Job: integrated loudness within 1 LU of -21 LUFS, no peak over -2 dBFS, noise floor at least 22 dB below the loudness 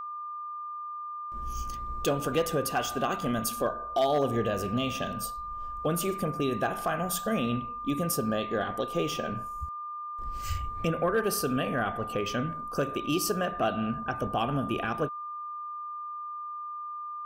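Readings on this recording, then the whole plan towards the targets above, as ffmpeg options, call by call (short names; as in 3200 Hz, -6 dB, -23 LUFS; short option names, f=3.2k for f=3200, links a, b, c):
steady tone 1200 Hz; tone level -35 dBFS; loudness -31.0 LUFS; peak -17.0 dBFS; loudness target -21.0 LUFS
-> -af "bandreject=f=1.2k:w=30"
-af "volume=10dB"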